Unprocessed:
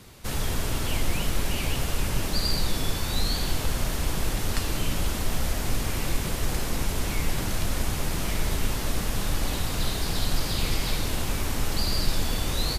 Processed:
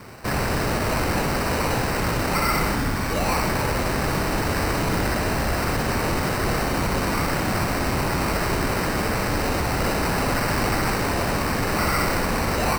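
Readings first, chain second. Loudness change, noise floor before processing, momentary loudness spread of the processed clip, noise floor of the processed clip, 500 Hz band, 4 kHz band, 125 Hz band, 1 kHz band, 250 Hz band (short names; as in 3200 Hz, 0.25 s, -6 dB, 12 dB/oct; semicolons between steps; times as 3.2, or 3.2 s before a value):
+5.5 dB, -30 dBFS, 2 LU, -25 dBFS, +10.5 dB, 0.0 dB, +4.0 dB, +12.0 dB, +8.0 dB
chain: HPF 130 Hz 6 dB/oct; spectral delete 2.74–3.23, 340–3000 Hz; sample-and-hold 13×; hard clip -27 dBFS, distortion -15 dB; on a send: flutter echo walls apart 10.6 m, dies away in 0.49 s; on the sum: gain +8.5 dB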